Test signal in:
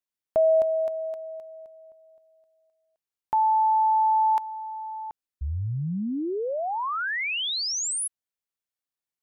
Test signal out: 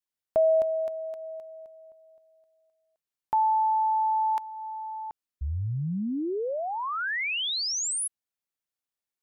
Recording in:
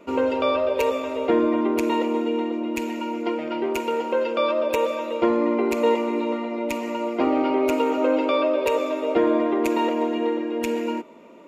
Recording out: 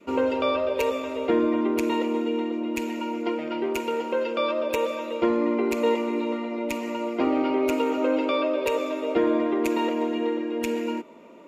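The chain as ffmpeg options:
-af "adynamicequalizer=threshold=0.0224:dfrequency=760:dqfactor=1.1:tfrequency=760:tqfactor=1.1:attack=5:release=100:ratio=0.375:range=2:mode=cutabove:tftype=bell,volume=-1dB"

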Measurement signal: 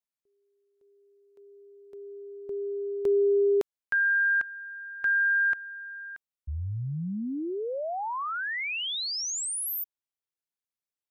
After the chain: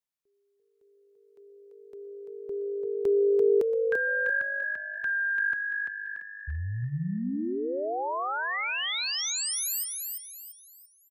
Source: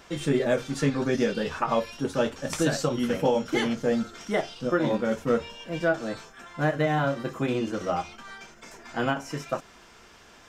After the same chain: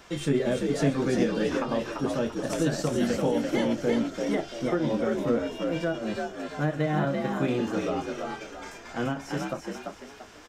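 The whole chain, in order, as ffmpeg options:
-filter_complex "[0:a]acrossover=split=430[a][b];[b]acompressor=threshold=-26dB:ratio=6:attack=0.39:release=841:knee=2.83:detection=peak[c];[a][c]amix=inputs=2:normalize=0,asplit=2[d][e];[e]asplit=5[f][g][h][i][j];[f]adelay=340,afreqshift=51,volume=-4dB[k];[g]adelay=680,afreqshift=102,volume=-12.9dB[l];[h]adelay=1020,afreqshift=153,volume=-21.7dB[m];[i]adelay=1360,afreqshift=204,volume=-30.6dB[n];[j]adelay=1700,afreqshift=255,volume=-39.5dB[o];[k][l][m][n][o]amix=inputs=5:normalize=0[p];[d][p]amix=inputs=2:normalize=0"

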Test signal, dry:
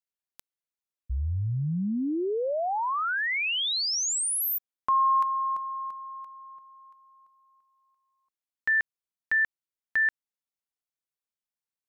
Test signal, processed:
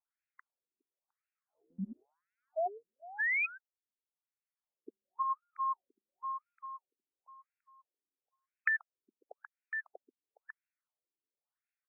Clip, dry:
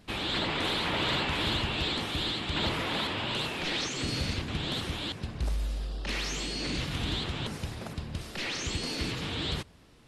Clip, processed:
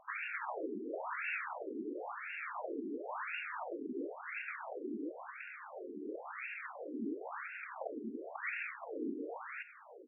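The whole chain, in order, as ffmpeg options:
-filter_complex "[0:a]asplit=2[a][b];[b]adelay=414,volume=-17dB,highshelf=f=4k:g=-9.32[c];[a][c]amix=inputs=2:normalize=0,acrossover=split=130[d][e];[e]acompressor=threshold=-36dB:ratio=6:attack=8.4:release=338:knee=2.83:detection=peak[f];[d][f]amix=inputs=2:normalize=0,afftfilt=real='re*between(b*sr/1024,300*pow(2000/300,0.5+0.5*sin(2*PI*0.96*pts/sr))/1.41,300*pow(2000/300,0.5+0.5*sin(2*PI*0.96*pts/sr))*1.41)':imag='im*between(b*sr/1024,300*pow(2000/300,0.5+0.5*sin(2*PI*0.96*pts/sr))/1.41,300*pow(2000/300,0.5+0.5*sin(2*PI*0.96*pts/sr))*1.41)':win_size=1024:overlap=0.75,volume=6.5dB"

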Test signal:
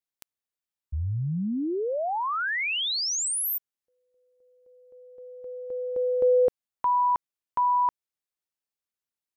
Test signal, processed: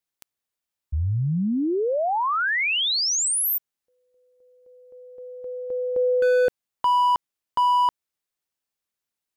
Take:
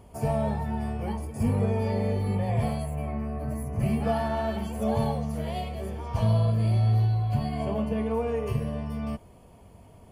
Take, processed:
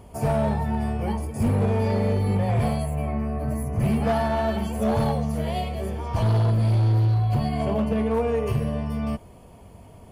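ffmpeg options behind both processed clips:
-af "acontrast=21,volume=17dB,asoftclip=hard,volume=-17dB"

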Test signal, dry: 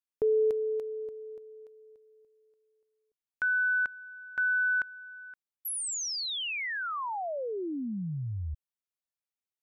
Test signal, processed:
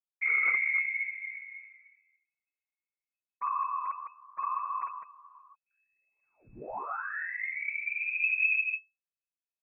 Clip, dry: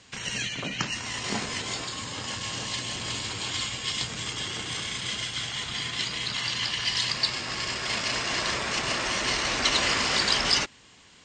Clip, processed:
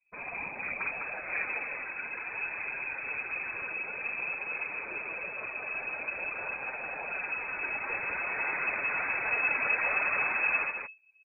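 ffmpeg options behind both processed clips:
-filter_complex "[0:a]anlmdn=0.0631,lowshelf=f=120:g=11,aecho=1:1:52.48|207:0.891|0.501,acrossover=split=140|680|1800[a][b][c][d];[d]acompressor=threshold=-37dB:ratio=6:attack=68:release=233:knee=6:detection=peak[e];[a][b][c][e]amix=inputs=4:normalize=0,volume=18dB,asoftclip=hard,volume=-18dB,afftfilt=real='hypot(re,im)*cos(2*PI*random(0))':imag='hypot(re,im)*sin(2*PI*random(1))':win_size=512:overlap=0.75,flanger=delay=3:depth=4.8:regen=-27:speed=0.52:shape=triangular,aeval=exprs='0.106*(cos(1*acos(clip(val(0)/0.106,-1,1)))-cos(1*PI/2))+0.00596*(cos(2*acos(clip(val(0)/0.106,-1,1)))-cos(2*PI/2))+0.00335*(cos(4*acos(clip(val(0)/0.106,-1,1)))-cos(4*PI/2))+0.0188*(cos(5*acos(clip(val(0)/0.106,-1,1)))-cos(5*PI/2))+0.0075*(cos(7*acos(clip(val(0)/0.106,-1,1)))-cos(7*PI/2))':c=same,asubboost=boost=3:cutoff=56,lowpass=f=2.2k:t=q:w=0.5098,lowpass=f=2.2k:t=q:w=0.6013,lowpass=f=2.2k:t=q:w=0.9,lowpass=f=2.2k:t=q:w=2.563,afreqshift=-2600,volume=1.5dB"

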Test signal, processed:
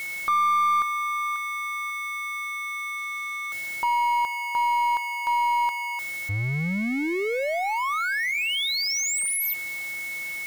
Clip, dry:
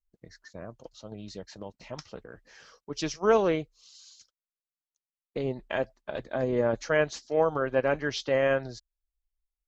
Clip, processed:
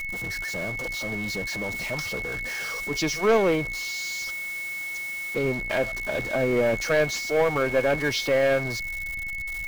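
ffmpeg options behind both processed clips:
-af "aeval=exprs='val(0)+0.5*0.0168*sgn(val(0))':c=same,aeval=exprs='val(0)+0.02*sin(2*PI*2200*n/s)':c=same,aeval=exprs='0.316*(cos(1*acos(clip(val(0)/0.316,-1,1)))-cos(1*PI/2))+0.0447*(cos(2*acos(clip(val(0)/0.316,-1,1)))-cos(2*PI/2))+0.0355*(cos(5*acos(clip(val(0)/0.316,-1,1)))-cos(5*PI/2))':c=same"

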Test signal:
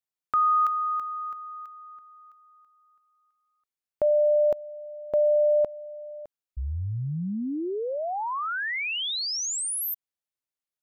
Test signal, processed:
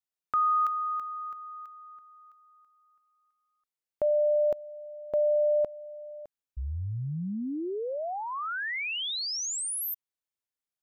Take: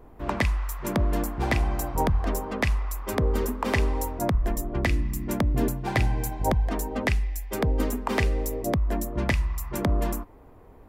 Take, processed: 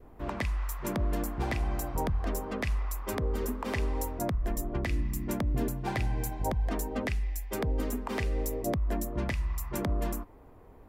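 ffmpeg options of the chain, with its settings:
-af "adynamicequalizer=threshold=0.00794:dfrequency=910:dqfactor=3:tfrequency=910:tqfactor=3:attack=5:release=100:ratio=0.375:range=2:mode=cutabove:tftype=bell,alimiter=limit=-18dB:level=0:latency=1:release=170,volume=-3dB"

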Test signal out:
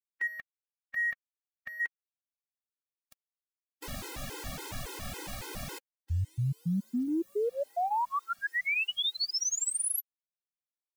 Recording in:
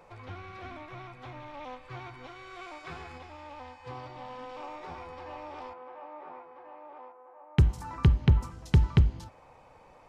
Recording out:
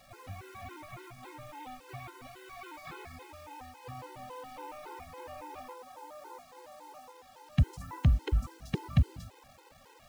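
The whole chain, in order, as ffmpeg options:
-af "asoftclip=type=tanh:threshold=-15.5dB,acrusher=bits=8:mix=0:aa=0.000001,afftfilt=real='re*gt(sin(2*PI*3.6*pts/sr)*(1-2*mod(floor(b*sr/1024/270),2)),0)':imag='im*gt(sin(2*PI*3.6*pts/sr)*(1-2*mod(floor(b*sr/1024/270),2)),0)':win_size=1024:overlap=0.75"

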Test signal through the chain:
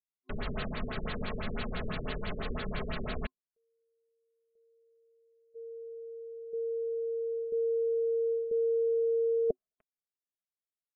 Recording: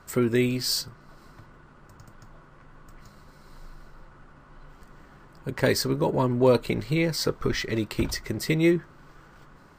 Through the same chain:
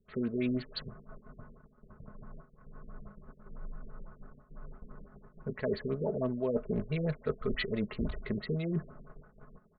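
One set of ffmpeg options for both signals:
-filter_complex "[0:a]agate=range=-14dB:threshold=-49dB:ratio=16:detection=peak,acrossover=split=1500[a][b];[a]adynamicequalizer=threshold=0.00891:dfrequency=650:dqfactor=4.1:tfrequency=650:tqfactor=4.1:attack=5:release=100:ratio=0.375:range=3.5:mode=boostabove:tftype=bell[c];[b]aeval=exprs='val(0)*gte(abs(val(0)),0.00631)':c=same[d];[c][d]amix=inputs=2:normalize=0,aecho=1:1:4.7:0.45,areverse,acompressor=threshold=-29dB:ratio=8,areverse,superequalizer=6b=0.501:9b=0.501,afftfilt=real='re*lt(b*sr/1024,490*pow(4700/490,0.5+0.5*sin(2*PI*6*pts/sr)))':imag='im*lt(b*sr/1024,490*pow(4700/490,0.5+0.5*sin(2*PI*6*pts/sr)))':win_size=1024:overlap=0.75,volume=1dB"

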